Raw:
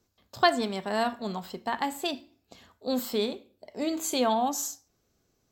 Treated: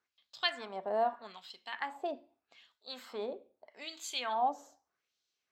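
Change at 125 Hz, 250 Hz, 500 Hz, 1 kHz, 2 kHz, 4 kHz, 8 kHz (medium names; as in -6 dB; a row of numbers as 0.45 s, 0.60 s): under -20 dB, -18.5 dB, -8.0 dB, -6.0 dB, -6.5 dB, -5.5 dB, -15.0 dB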